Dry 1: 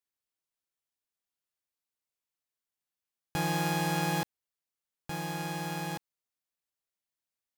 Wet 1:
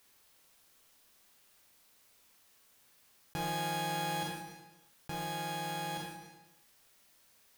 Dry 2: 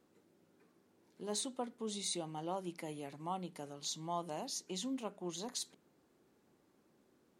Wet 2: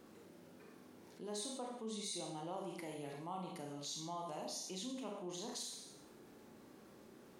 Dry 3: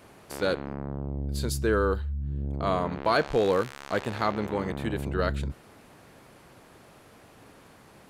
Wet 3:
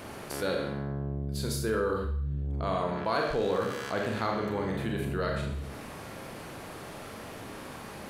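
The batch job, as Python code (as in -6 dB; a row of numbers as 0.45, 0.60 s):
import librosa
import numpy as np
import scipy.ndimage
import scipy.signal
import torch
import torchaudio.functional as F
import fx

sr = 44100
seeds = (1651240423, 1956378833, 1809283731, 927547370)

y = fx.peak_eq(x, sr, hz=7400.0, db=-2.0, octaves=0.28)
y = fx.rev_schroeder(y, sr, rt60_s=0.6, comb_ms=28, drr_db=1.0)
y = fx.env_flatten(y, sr, amount_pct=50)
y = y * 10.0 ** (-8.0 / 20.0)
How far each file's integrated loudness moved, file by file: -4.5, -3.5, -4.0 LU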